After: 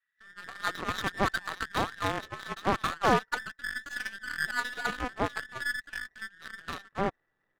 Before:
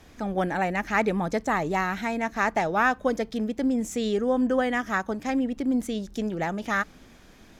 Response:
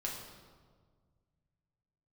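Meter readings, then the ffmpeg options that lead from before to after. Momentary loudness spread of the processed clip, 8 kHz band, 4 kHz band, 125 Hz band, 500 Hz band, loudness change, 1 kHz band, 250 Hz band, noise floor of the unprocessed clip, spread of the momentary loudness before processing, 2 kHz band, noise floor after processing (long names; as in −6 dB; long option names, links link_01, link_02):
13 LU, −3.5 dB, +2.5 dB, −4.5 dB, −8.5 dB, −6.0 dB, −4.5 dB, −13.0 dB, −52 dBFS, 6 LU, −2.5 dB, −78 dBFS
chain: -filter_complex "[0:a]afftfilt=real='real(if(between(b,1,1012),(2*floor((b-1)/92)+1)*92-b,b),0)':imag='imag(if(between(b,1,1012),(2*floor((b-1)/92)+1)*92-b,b),0)*if(between(b,1,1012),-1,1)':win_size=2048:overlap=0.75,highshelf=frequency=8500:gain=-9,acontrast=42,acrossover=split=1700[link_01][link_02];[link_01]adelay=270[link_03];[link_03][link_02]amix=inputs=2:normalize=0,adynamicsmooth=sensitivity=5.5:basefreq=1400,aeval=exprs='0.531*(cos(1*acos(clip(val(0)/0.531,-1,1)))-cos(1*PI/2))+0.0531*(cos(3*acos(clip(val(0)/0.531,-1,1)))-cos(3*PI/2))+0.0133*(cos(6*acos(clip(val(0)/0.531,-1,1)))-cos(6*PI/2))+0.0473*(cos(7*acos(clip(val(0)/0.531,-1,1)))-cos(7*PI/2))':channel_layout=same,volume=-4dB"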